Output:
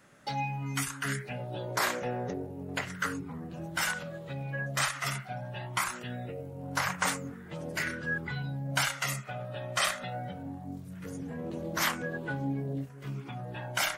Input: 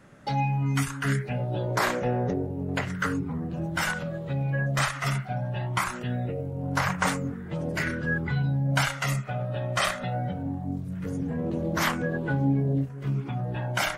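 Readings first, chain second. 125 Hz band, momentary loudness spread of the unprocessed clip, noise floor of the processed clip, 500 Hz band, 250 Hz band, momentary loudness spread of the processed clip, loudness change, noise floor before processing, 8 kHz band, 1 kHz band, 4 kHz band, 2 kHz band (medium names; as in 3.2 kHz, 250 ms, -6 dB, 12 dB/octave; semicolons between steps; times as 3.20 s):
-10.5 dB, 6 LU, -46 dBFS, -6.5 dB, -9.0 dB, 11 LU, -5.5 dB, -37 dBFS, +1.5 dB, -4.5 dB, -1.0 dB, -3.0 dB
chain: tilt EQ +2 dB/octave; trim -4.5 dB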